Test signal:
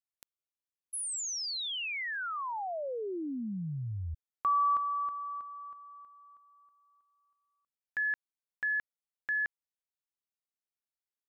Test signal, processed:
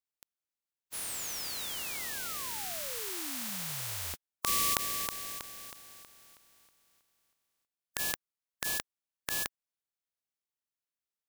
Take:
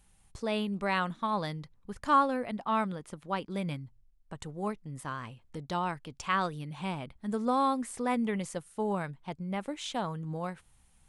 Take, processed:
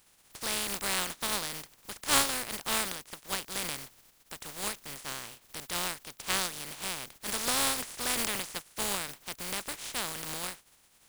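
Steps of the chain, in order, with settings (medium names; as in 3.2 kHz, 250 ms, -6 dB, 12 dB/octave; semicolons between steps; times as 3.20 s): spectral contrast reduction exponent 0.19; trim -1 dB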